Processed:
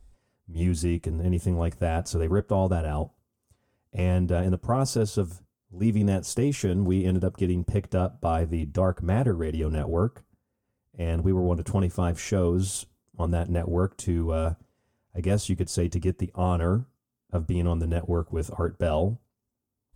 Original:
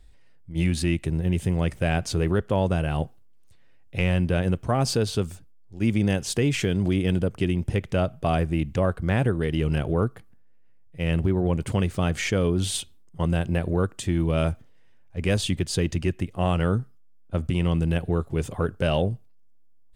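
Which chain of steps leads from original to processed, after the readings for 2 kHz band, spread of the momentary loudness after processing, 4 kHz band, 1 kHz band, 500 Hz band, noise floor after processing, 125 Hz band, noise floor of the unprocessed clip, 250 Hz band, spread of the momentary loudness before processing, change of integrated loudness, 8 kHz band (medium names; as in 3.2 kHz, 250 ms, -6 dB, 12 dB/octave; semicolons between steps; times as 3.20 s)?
-9.0 dB, 7 LU, -9.0 dB, -1.0 dB, -1.0 dB, -82 dBFS, -1.5 dB, -50 dBFS, -2.0 dB, 6 LU, -1.5 dB, -1.5 dB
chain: high-order bell 2.7 kHz -9.5 dB; comb of notches 160 Hz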